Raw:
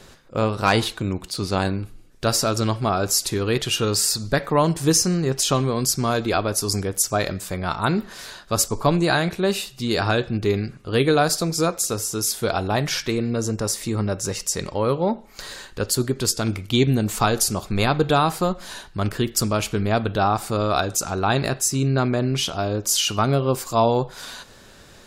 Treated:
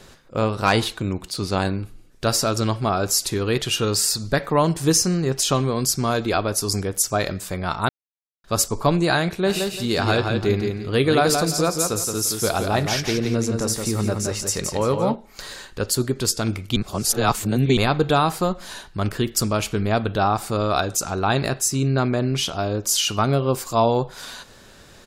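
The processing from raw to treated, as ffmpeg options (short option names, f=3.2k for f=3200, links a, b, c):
-filter_complex "[0:a]asplit=3[a][b][c];[a]afade=t=out:st=9.45:d=0.02[d];[b]aecho=1:1:171|342|513|684:0.562|0.157|0.0441|0.0123,afade=t=in:st=9.45:d=0.02,afade=t=out:st=15.14:d=0.02[e];[c]afade=t=in:st=15.14:d=0.02[f];[d][e][f]amix=inputs=3:normalize=0,asplit=5[g][h][i][j][k];[g]atrim=end=7.89,asetpts=PTS-STARTPTS,afade=t=out:st=7.886:d=0.004:c=hsin[l];[h]atrim=start=7.89:end=8.44,asetpts=PTS-STARTPTS,volume=0[m];[i]atrim=start=8.44:end=16.762,asetpts=PTS-STARTPTS,afade=t=in:d=0.004:c=hsin[n];[j]atrim=start=16.758:end=17.772,asetpts=PTS-STARTPTS,areverse[o];[k]atrim=start=17.768[p];[l][m][n]concat=n=3:v=0:a=1[q];[q][o]acrossfade=d=0.004:c1=hsin:c2=hsin[r];[r][p]acrossfade=d=0.004:c1=hsin:c2=hsin"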